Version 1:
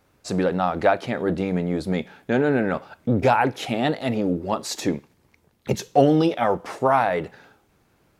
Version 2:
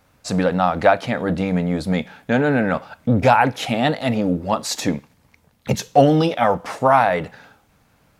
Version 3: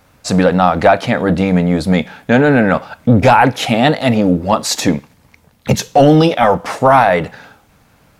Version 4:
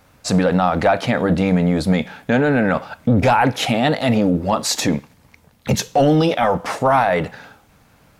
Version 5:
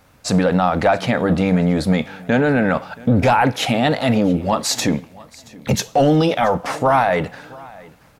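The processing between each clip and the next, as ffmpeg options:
ffmpeg -i in.wav -af "equalizer=frequency=370:width=4.5:gain=-13.5,volume=5dB" out.wav
ffmpeg -i in.wav -af "apsyclip=9.5dB,volume=-2dB" out.wav
ffmpeg -i in.wav -af "alimiter=limit=-6dB:level=0:latency=1:release=26,volume=-2dB" out.wav
ffmpeg -i in.wav -af "aecho=1:1:676|1352:0.075|0.0225" out.wav

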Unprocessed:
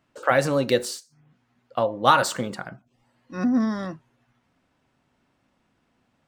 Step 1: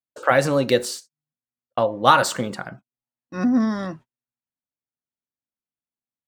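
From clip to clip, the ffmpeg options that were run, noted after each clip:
ffmpeg -i in.wav -af "agate=range=-37dB:threshold=-44dB:ratio=16:detection=peak,volume=2.5dB" out.wav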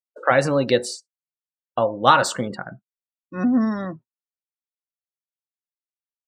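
ffmpeg -i in.wav -af "afftdn=noise_reduction=27:noise_floor=-37" out.wav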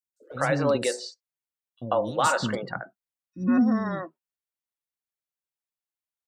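ffmpeg -i in.wav -filter_complex "[0:a]alimiter=limit=-12.5dB:level=0:latency=1:release=151,acrossover=split=330|5100[link_01][link_02][link_03];[link_01]adelay=40[link_04];[link_02]adelay=140[link_05];[link_04][link_05][link_03]amix=inputs=3:normalize=0" out.wav

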